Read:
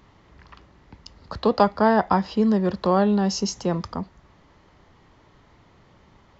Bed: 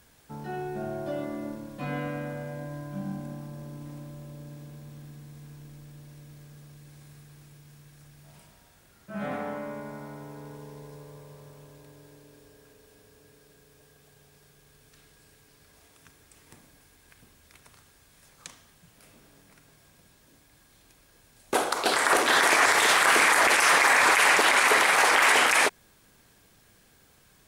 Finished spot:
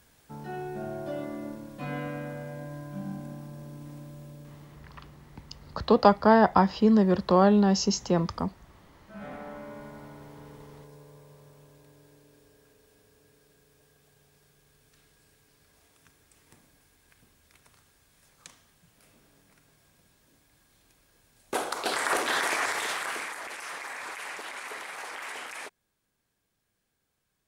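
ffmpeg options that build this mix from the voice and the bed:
ffmpeg -i stem1.wav -i stem2.wav -filter_complex "[0:a]adelay=4450,volume=-0.5dB[link_01];[1:a]volume=1.5dB,afade=type=out:start_time=4.26:duration=0.6:silence=0.473151,afade=type=in:start_time=9.33:duration=0.48:silence=0.668344,afade=type=out:start_time=22.16:duration=1.21:silence=0.199526[link_02];[link_01][link_02]amix=inputs=2:normalize=0" out.wav

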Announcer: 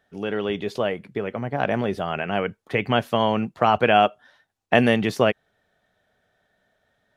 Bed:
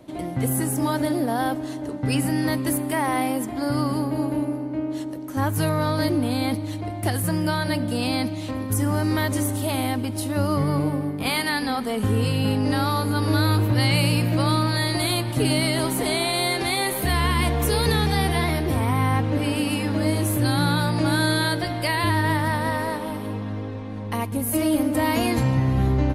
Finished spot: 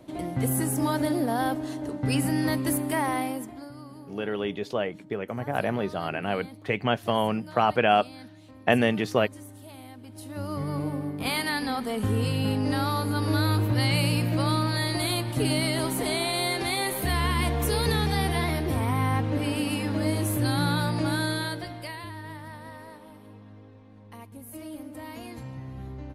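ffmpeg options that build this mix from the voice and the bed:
ffmpeg -i stem1.wav -i stem2.wav -filter_complex "[0:a]adelay=3950,volume=-4dB[link_01];[1:a]volume=14dB,afade=type=out:start_time=2.98:duration=0.73:silence=0.125893,afade=type=in:start_time=9.99:duration=1.29:silence=0.149624,afade=type=out:start_time=20.87:duration=1.22:silence=0.188365[link_02];[link_01][link_02]amix=inputs=2:normalize=0" out.wav

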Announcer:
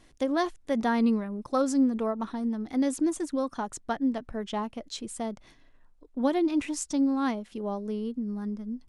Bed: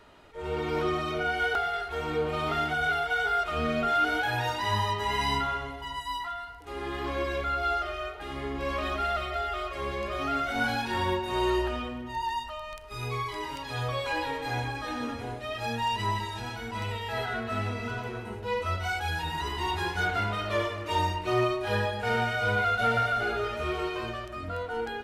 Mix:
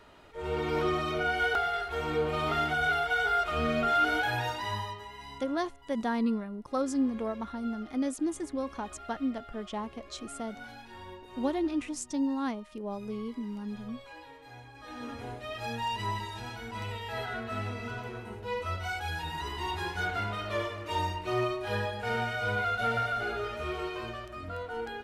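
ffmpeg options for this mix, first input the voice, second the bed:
ffmpeg -i stem1.wav -i stem2.wav -filter_complex "[0:a]adelay=5200,volume=-4.5dB[link_01];[1:a]volume=13.5dB,afade=type=out:start_time=4.2:duration=0.91:silence=0.133352,afade=type=in:start_time=14.72:duration=0.51:silence=0.199526[link_02];[link_01][link_02]amix=inputs=2:normalize=0" out.wav

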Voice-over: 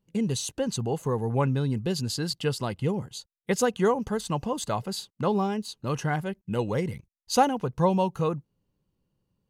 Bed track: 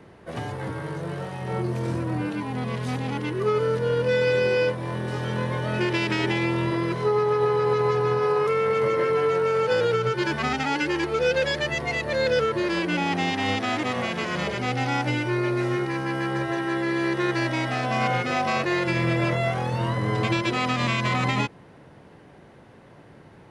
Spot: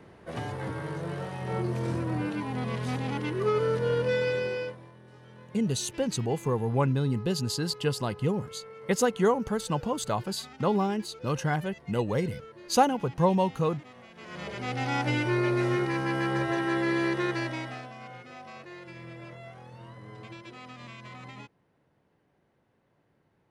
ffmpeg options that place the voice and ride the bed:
ffmpeg -i stem1.wav -i stem2.wav -filter_complex "[0:a]adelay=5400,volume=-0.5dB[link_01];[1:a]volume=19dB,afade=type=out:start_time=3.94:duration=0.98:silence=0.0944061,afade=type=in:start_time=14.14:duration=1.07:silence=0.0794328,afade=type=out:start_time=16.92:duration=1.02:silence=0.105925[link_02];[link_01][link_02]amix=inputs=2:normalize=0" out.wav

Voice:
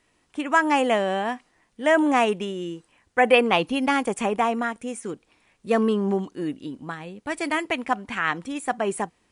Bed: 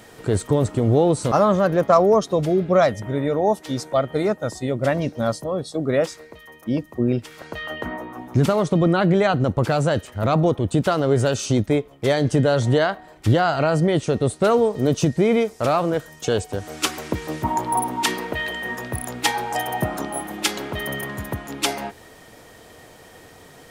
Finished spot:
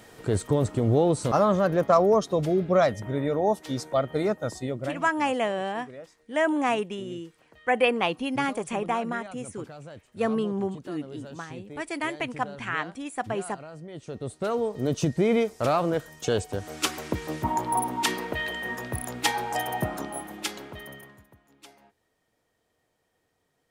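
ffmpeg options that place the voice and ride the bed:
ffmpeg -i stem1.wav -i stem2.wav -filter_complex "[0:a]adelay=4500,volume=-5dB[link_01];[1:a]volume=15dB,afade=type=out:start_time=4.56:duration=0.5:silence=0.112202,afade=type=in:start_time=13.88:duration=1.5:silence=0.105925,afade=type=out:start_time=19.66:duration=1.61:silence=0.0595662[link_02];[link_01][link_02]amix=inputs=2:normalize=0" out.wav

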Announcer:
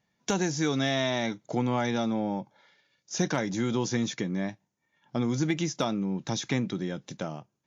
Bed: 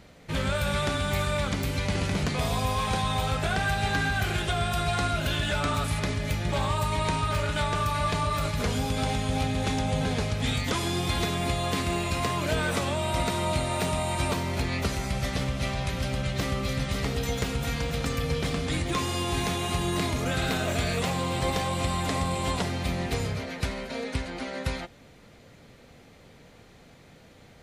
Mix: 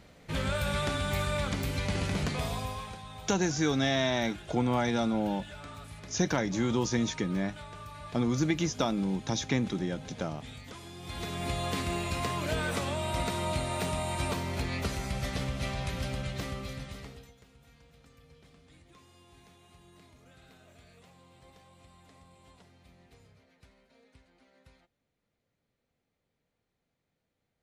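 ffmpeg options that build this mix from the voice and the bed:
ffmpeg -i stem1.wav -i stem2.wav -filter_complex "[0:a]adelay=3000,volume=-0.5dB[link_01];[1:a]volume=10dB,afade=type=out:start_time=2.26:duration=0.71:silence=0.188365,afade=type=in:start_time=10.99:duration=0.58:silence=0.211349,afade=type=out:start_time=16.01:duration=1.32:silence=0.0530884[link_02];[link_01][link_02]amix=inputs=2:normalize=0" out.wav

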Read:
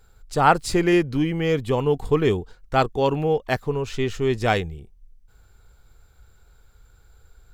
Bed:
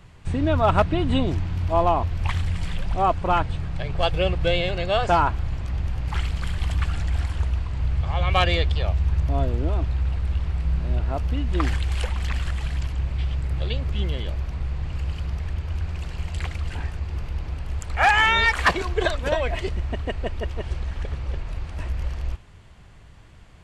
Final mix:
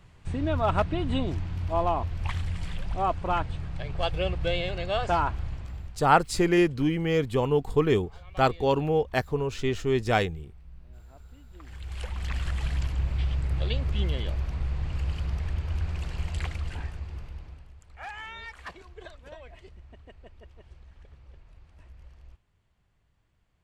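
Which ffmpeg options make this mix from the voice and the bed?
ffmpeg -i stem1.wav -i stem2.wav -filter_complex "[0:a]adelay=5650,volume=-3dB[link_01];[1:a]volume=18dB,afade=type=out:start_time=5.43:duration=0.63:silence=0.1,afade=type=in:start_time=11.65:duration=1.01:silence=0.0630957,afade=type=out:start_time=16.24:duration=1.5:silence=0.0944061[link_02];[link_01][link_02]amix=inputs=2:normalize=0" out.wav

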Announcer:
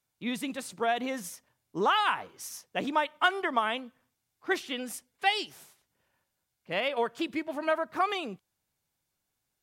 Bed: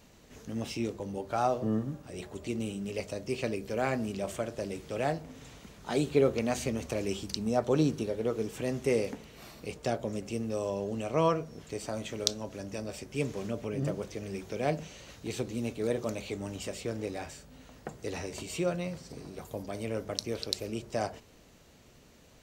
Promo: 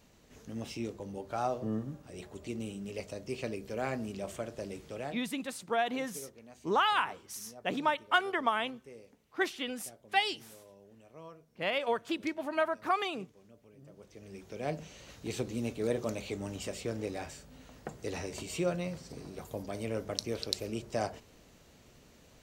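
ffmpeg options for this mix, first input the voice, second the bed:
ffmpeg -i stem1.wav -i stem2.wav -filter_complex "[0:a]adelay=4900,volume=-2dB[link_01];[1:a]volume=18dB,afade=type=out:start_time=4.85:duration=0.44:silence=0.112202,afade=type=in:start_time=13.88:duration=1.42:silence=0.0749894[link_02];[link_01][link_02]amix=inputs=2:normalize=0" out.wav

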